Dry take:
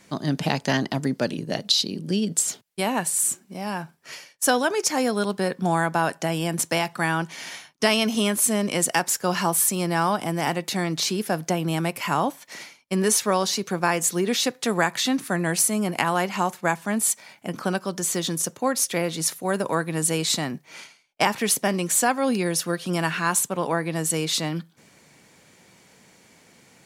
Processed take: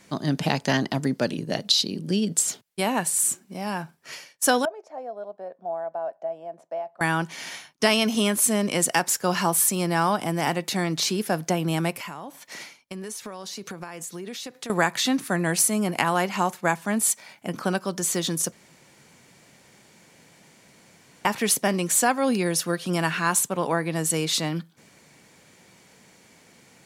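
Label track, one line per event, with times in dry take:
4.650000	7.010000	band-pass 650 Hz, Q 7.6
11.920000	14.700000	compressor 10:1, threshold -32 dBFS
18.520000	21.250000	room tone

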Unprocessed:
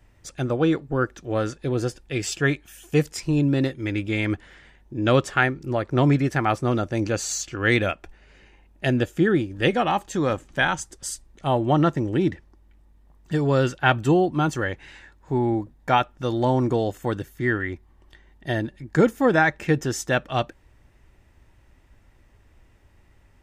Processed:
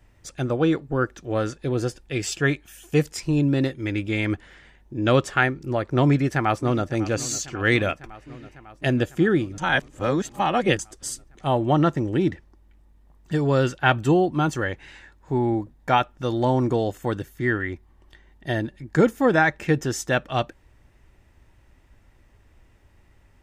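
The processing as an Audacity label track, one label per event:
6.060000	6.890000	echo throw 0.55 s, feedback 75%, level -16.5 dB
9.580000	10.790000	reverse

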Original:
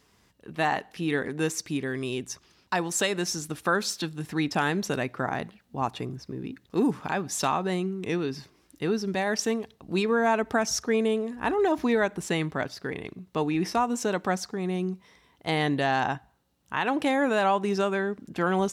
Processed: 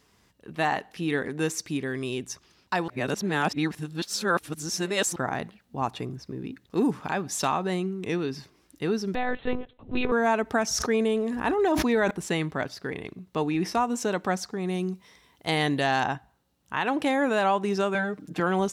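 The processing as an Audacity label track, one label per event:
2.880000	5.160000	reverse
9.150000	10.120000	monotone LPC vocoder at 8 kHz 250 Hz
10.670000	12.110000	sustainer at most 27 dB/s
14.670000	16.040000	high shelf 3500 Hz +6.5 dB
17.940000	18.400000	comb 6.5 ms, depth 91%

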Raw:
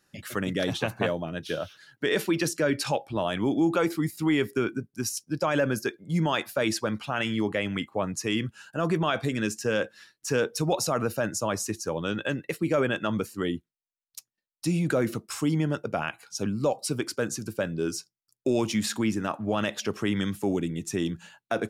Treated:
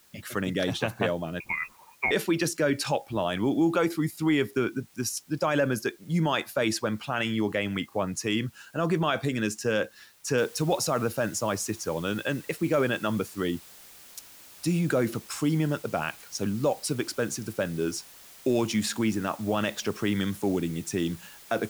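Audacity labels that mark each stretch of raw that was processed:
1.400000	2.110000	inverted band carrier 2600 Hz
10.380000	10.380000	noise floor step -60 dB -50 dB

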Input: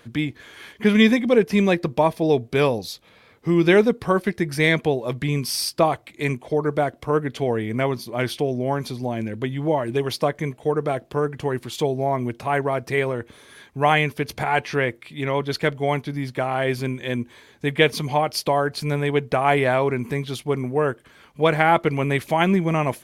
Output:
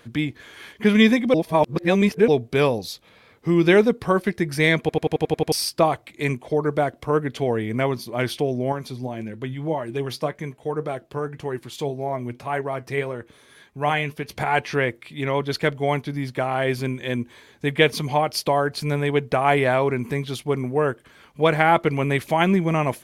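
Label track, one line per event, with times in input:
1.340000	2.280000	reverse
4.800000	4.800000	stutter in place 0.09 s, 8 plays
8.720000	14.360000	flange 1.8 Hz, delay 4.7 ms, depth 3.7 ms, regen +72%

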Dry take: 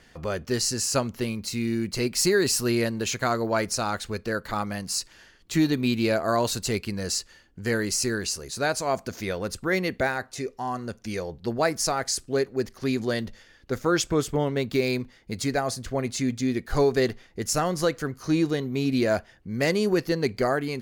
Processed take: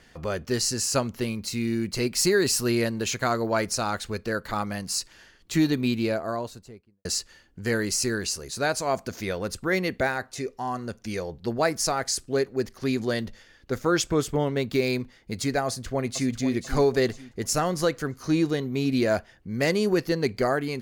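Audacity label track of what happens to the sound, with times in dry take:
5.660000	7.050000	studio fade out
15.660000	16.330000	echo throw 0.49 s, feedback 35%, level -10.5 dB

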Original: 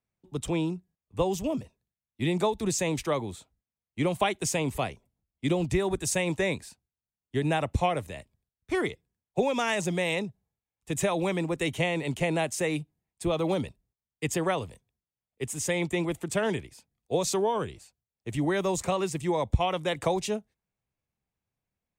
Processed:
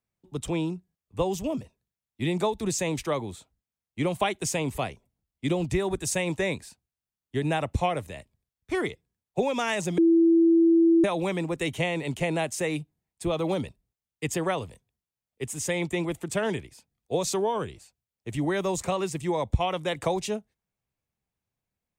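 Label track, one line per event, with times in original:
9.980000	11.040000	bleep 332 Hz -15.5 dBFS

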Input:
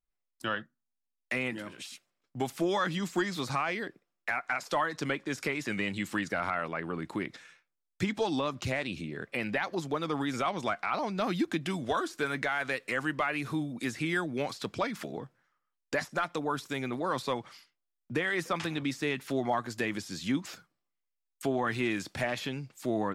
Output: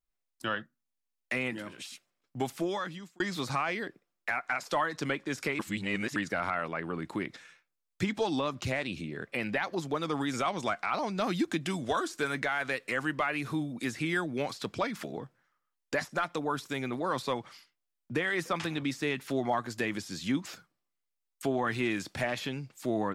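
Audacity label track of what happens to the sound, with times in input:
2.450000	3.200000	fade out
5.590000	6.160000	reverse
9.950000	12.400000	bell 7500 Hz +4.5 dB 1.1 oct

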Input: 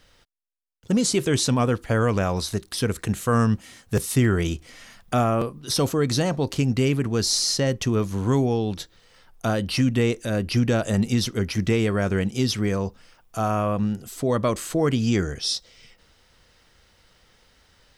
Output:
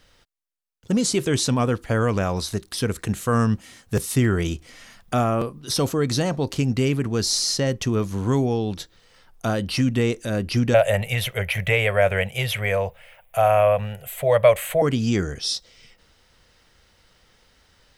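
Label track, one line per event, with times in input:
10.740000	14.820000	EQ curve 150 Hz 0 dB, 280 Hz -26 dB, 570 Hz +13 dB, 1200 Hz -1 dB, 2200 Hz +13 dB, 3300 Hz +5 dB, 5200 Hz -13 dB, 12000 Hz +10 dB

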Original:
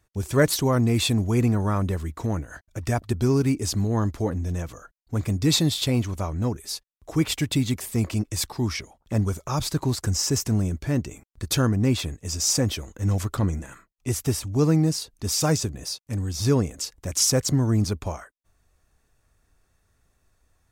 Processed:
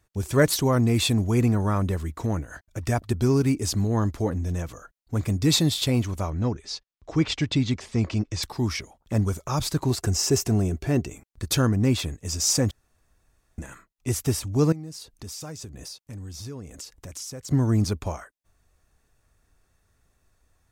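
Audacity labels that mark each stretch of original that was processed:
6.300000	8.430000	LPF 6000 Hz 24 dB/oct
9.900000	11.070000	small resonant body resonances 390/700/2700 Hz, height 9 dB
12.710000	13.580000	room tone
14.720000	17.510000	compressor 4:1, threshold -37 dBFS

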